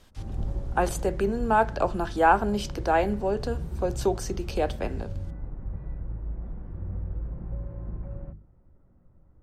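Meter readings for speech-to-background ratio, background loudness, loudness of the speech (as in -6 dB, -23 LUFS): 10.0 dB, -36.5 LUFS, -26.5 LUFS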